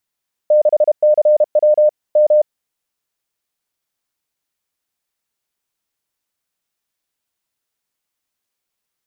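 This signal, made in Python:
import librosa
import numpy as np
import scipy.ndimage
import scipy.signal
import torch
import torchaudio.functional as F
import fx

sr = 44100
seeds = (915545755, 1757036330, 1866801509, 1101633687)

y = fx.morse(sr, text='6CW M', wpm=32, hz=604.0, level_db=-7.5)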